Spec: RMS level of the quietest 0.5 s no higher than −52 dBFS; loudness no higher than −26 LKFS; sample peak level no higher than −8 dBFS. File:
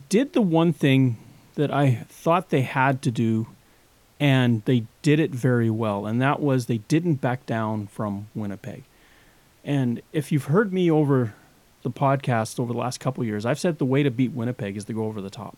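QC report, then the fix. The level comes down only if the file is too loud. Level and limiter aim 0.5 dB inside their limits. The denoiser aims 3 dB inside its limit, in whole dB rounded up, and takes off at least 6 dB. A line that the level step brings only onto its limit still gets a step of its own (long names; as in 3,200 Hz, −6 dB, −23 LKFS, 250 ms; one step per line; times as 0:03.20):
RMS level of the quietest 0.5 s −57 dBFS: in spec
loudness −23.5 LKFS: out of spec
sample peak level −5.5 dBFS: out of spec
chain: level −3 dB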